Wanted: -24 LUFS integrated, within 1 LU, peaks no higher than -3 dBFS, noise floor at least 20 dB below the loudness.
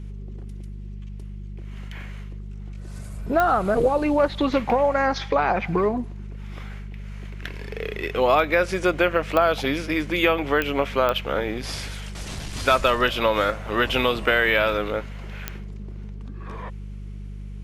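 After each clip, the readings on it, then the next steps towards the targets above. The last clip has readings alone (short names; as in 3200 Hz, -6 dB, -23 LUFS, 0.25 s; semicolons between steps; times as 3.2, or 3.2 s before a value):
clicks 5; hum 50 Hz; harmonics up to 200 Hz; hum level -32 dBFS; loudness -22.0 LUFS; peak -4.5 dBFS; loudness target -24.0 LUFS
-> de-click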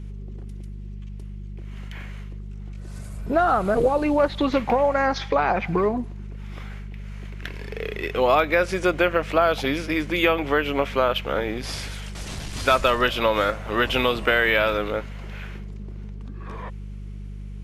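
clicks 0; hum 50 Hz; harmonics up to 200 Hz; hum level -32 dBFS
-> de-hum 50 Hz, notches 4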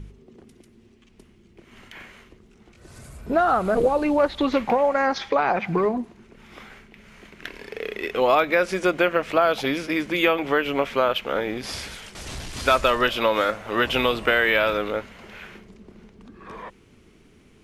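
hum none; loudness -22.0 LUFS; peak -4.0 dBFS; loudness target -24.0 LUFS
-> gain -2 dB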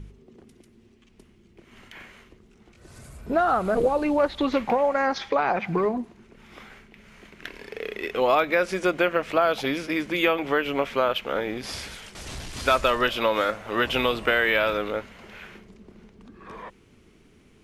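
loudness -24.0 LUFS; peak -6.0 dBFS; noise floor -57 dBFS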